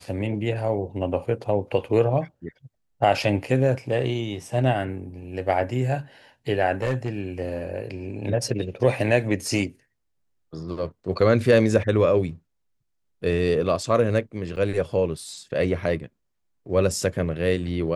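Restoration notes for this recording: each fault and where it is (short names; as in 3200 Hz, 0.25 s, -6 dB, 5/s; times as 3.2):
6.82–7.2 clipped -19.5 dBFS
14.56–14.57 gap 6.5 ms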